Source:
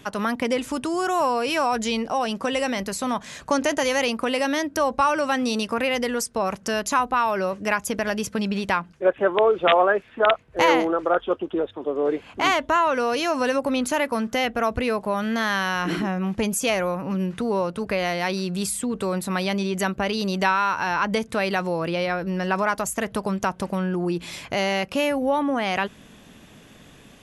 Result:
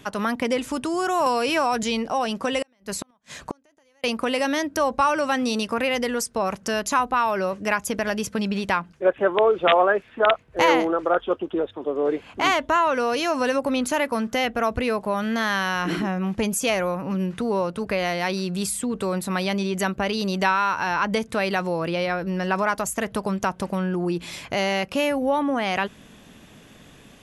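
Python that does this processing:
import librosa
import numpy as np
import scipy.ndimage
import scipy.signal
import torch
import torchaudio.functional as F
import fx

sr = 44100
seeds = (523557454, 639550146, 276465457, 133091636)

y = fx.band_squash(x, sr, depth_pct=70, at=(1.26, 1.83))
y = fx.gate_flip(y, sr, shuts_db=-16.0, range_db=-39, at=(2.62, 4.04))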